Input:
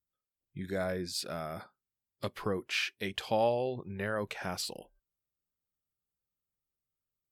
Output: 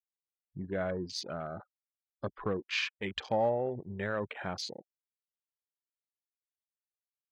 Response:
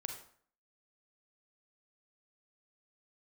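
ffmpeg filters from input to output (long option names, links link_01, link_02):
-af "afftfilt=real='re*gte(hypot(re,im),0.00891)':imag='im*gte(hypot(re,im),0.00891)':win_size=1024:overlap=0.75,volume=21.5dB,asoftclip=hard,volume=-21.5dB,afwtdn=0.00708"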